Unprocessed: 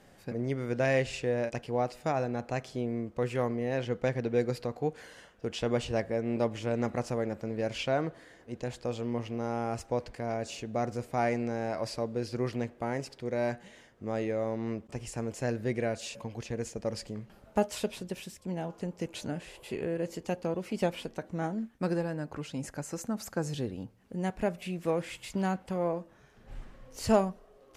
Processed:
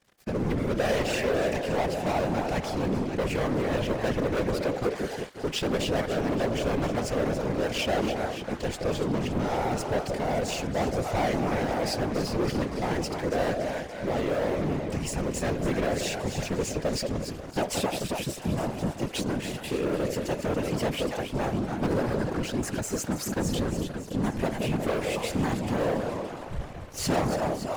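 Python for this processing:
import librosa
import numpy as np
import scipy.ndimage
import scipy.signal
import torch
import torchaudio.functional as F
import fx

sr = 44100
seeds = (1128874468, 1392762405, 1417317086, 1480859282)

y = fx.echo_split(x, sr, split_hz=680.0, low_ms=177, high_ms=284, feedback_pct=52, wet_db=-9)
y = fx.leveller(y, sr, passes=5)
y = fx.whisperise(y, sr, seeds[0])
y = y * 10.0 ** (-9.0 / 20.0)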